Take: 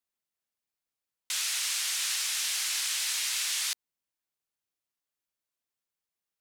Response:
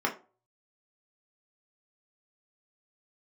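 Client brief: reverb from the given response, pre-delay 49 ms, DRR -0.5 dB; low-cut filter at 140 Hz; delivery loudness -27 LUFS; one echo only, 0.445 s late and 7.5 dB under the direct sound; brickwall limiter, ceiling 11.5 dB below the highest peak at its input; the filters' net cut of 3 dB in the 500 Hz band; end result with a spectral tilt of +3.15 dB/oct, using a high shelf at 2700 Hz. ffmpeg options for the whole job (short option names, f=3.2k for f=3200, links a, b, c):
-filter_complex "[0:a]highpass=140,equalizer=f=500:t=o:g=-4.5,highshelf=f=2.7k:g=6,alimiter=level_in=1dB:limit=-24dB:level=0:latency=1,volume=-1dB,aecho=1:1:445:0.422,asplit=2[a][b];[1:a]atrim=start_sample=2205,adelay=49[c];[b][c]afir=irnorm=-1:irlink=0,volume=-9.5dB[d];[a][d]amix=inputs=2:normalize=0,volume=3.5dB"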